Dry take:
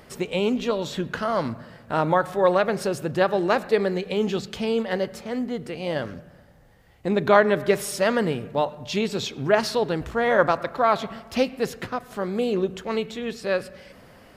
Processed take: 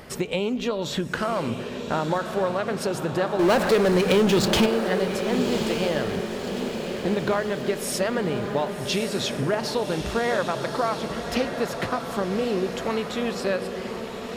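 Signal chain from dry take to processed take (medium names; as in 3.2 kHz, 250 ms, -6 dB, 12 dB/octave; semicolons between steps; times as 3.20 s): compression, threshold -28 dBFS, peak gain reduction 16 dB; 3.39–4.66 s: power-law waveshaper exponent 0.5; echo that smears into a reverb 1171 ms, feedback 59%, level -7 dB; trim +5.5 dB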